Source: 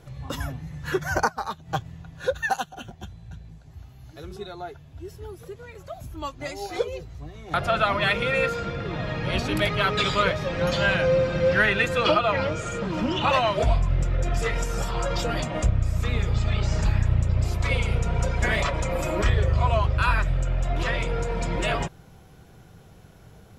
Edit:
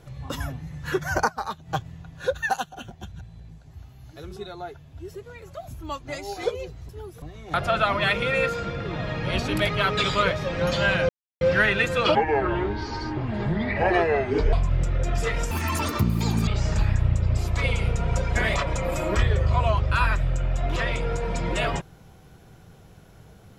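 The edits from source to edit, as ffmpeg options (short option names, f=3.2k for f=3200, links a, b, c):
-filter_complex "[0:a]asplit=12[a][b][c][d][e][f][g][h][i][j][k][l];[a]atrim=end=3.122[m];[b]atrim=start=3.118:end=3.402,asetpts=PTS-STARTPTS,areverse[n];[c]atrim=start=3.398:end=5.142[o];[d]atrim=start=5.468:end=7.222[p];[e]atrim=start=5.138:end=5.472[q];[f]atrim=start=7.218:end=11.09,asetpts=PTS-STARTPTS,afade=t=out:st=3.868:d=0.004:c=hsin[r];[g]atrim=start=11.09:end=11.41,asetpts=PTS-STARTPTS,volume=0[s];[h]atrim=start=11.41:end=12.154,asetpts=PTS-STARTPTS,afade=t=in:d=0.004:c=hsin[t];[i]atrim=start=12.15:end=13.72,asetpts=PTS-STARTPTS,asetrate=29106,aresample=44100[u];[j]atrim=start=13.716:end=14.704[v];[k]atrim=start=14.7:end=16.54,asetpts=PTS-STARTPTS,asetrate=84231,aresample=44100[w];[l]atrim=start=16.536[x];[m][n]acrossfade=d=0.004:c1=hsin:c2=hsin[y];[y][o]acrossfade=d=0.004:c1=hsin:c2=hsin[z];[z][p]acrossfade=d=0.004:c1=hsin:c2=hsin[aa];[aa][q]acrossfade=d=0.004:c1=hsin:c2=hsin[ab];[r][s][t]concat=n=3:v=0:a=1[ac];[ab][ac]acrossfade=d=0.004:c1=hsin:c2=hsin[ad];[ad][u]acrossfade=d=0.004:c1=hsin:c2=hsin[ae];[ae][v]acrossfade=d=0.004:c1=hsin:c2=hsin[af];[af][w]acrossfade=d=0.004:c1=hsin:c2=hsin[ag];[ag][x]acrossfade=d=0.004:c1=hsin:c2=hsin"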